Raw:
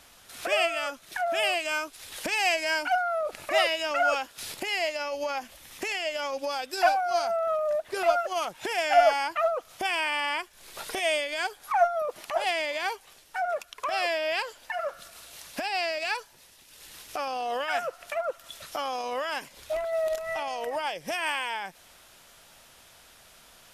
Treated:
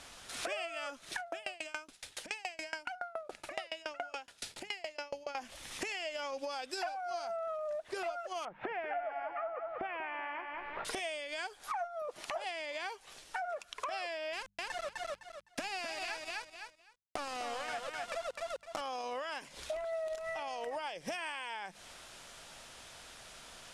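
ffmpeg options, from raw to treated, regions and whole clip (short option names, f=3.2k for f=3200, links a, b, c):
-filter_complex "[0:a]asettb=1/sr,asplit=3[a][b][c];[a]atrim=end=1.184[d];[b]atrim=start=1.18:end=5.35,asetpts=PTS-STARTPTS,afade=t=in:d=0.004:c=qsin,afade=t=out:st=4.166:d=0.004:c=qsin,bandreject=f=1.1k:w=10,acompressor=threshold=-26dB:ratio=2.5:attack=3.2:release=140:knee=1:detection=peak,aeval=exprs='val(0)*pow(10,-29*if(lt(mod(7.1*n/s,1),2*abs(7.1)/1000),1-mod(7.1*n/s,1)/(2*abs(7.1)/1000),(mod(7.1*n/s,1)-2*abs(7.1)/1000)/(1-2*abs(7.1)/1000))/20)':c=same[e];[c]atrim=start=5.346[f];[d][e]acrossfade=d=0.004:c1=hsin:c2=qsin[g];[g][f]acrossfade=d=0.004:c1=qsin:c2=hsin,asettb=1/sr,asplit=3[h][i][j];[h]atrim=end=8.454[k];[i]atrim=start=8.45:end=10.85,asetpts=PTS-STARTPTS,afade=t=in:d=0.004:c=qsin,afade=t=out:st=2.396:d=0.004:c=qsin,lowpass=f=2.1k:w=0.5412,lowpass=f=2.1k:w=1.3066,aecho=1:1:190|380|570|760|950:0.398|0.171|0.0736|0.0317|0.0136,atrim=end_sample=105840[l];[j]atrim=start=10.846[m];[k][l]acrossfade=d=0.004:c1=hsin:c2=qsin[n];[n][m]acrossfade=d=0.004:c1=qsin:c2=hsin,asettb=1/sr,asplit=3[o][p][q];[o]atrim=end=14.334[r];[p]atrim=start=14.33:end=18.81,asetpts=PTS-STARTPTS,afade=t=in:d=0.004:c=qsin,afade=t=out:st=4.476:d=0.004:c=qsin,aeval=exprs='val(0)*gte(abs(val(0)),0.0282)':c=same,aecho=1:1:255|510|765:0.631|0.101|0.0162,atrim=end_sample=197568[s];[q]atrim=start=18.806[t];[r][s]acrossfade=d=0.004:c1=hsin:c2=qsin[u];[u][t]acrossfade=d=0.004:c1=qsin:c2=hsin,lowpass=f=9.8k:w=0.5412,lowpass=f=9.8k:w=1.3066,bandreject=f=50:t=h:w=6,bandreject=f=100:t=h:w=6,bandreject=f=150:t=h:w=6,bandreject=f=200:t=h:w=6,acompressor=threshold=-39dB:ratio=8,volume=2.5dB"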